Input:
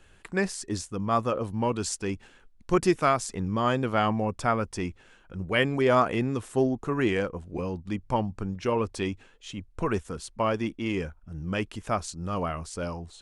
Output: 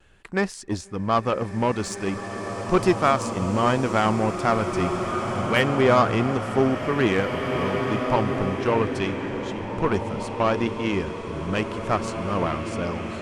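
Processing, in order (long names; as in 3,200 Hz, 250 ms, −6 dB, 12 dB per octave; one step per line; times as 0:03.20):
high-shelf EQ 6,400 Hz −7.5 dB
in parallel at 0 dB: brickwall limiter −19 dBFS, peak gain reduction 9 dB
on the sum: pitch vibrato 0.78 Hz 23 cents
harmonic generator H 6 −34 dB, 7 −24 dB, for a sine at −7 dBFS
slow-attack reverb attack 2,080 ms, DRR 4 dB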